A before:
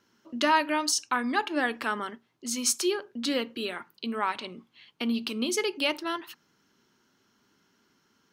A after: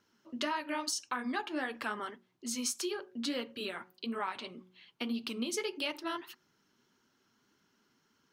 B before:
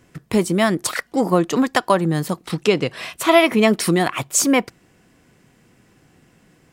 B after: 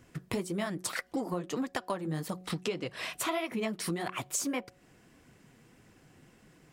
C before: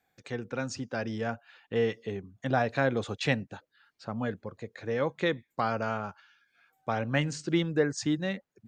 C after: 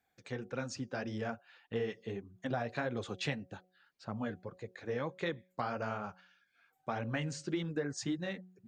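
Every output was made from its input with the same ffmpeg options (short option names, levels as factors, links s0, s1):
-af "flanger=delay=0.1:depth=9:regen=-29:speed=1.7:shape=triangular,acompressor=threshold=0.0316:ratio=6,bandreject=f=183.9:t=h:w=4,bandreject=f=367.8:t=h:w=4,bandreject=f=551.7:t=h:w=4,bandreject=f=735.6:t=h:w=4,volume=0.891"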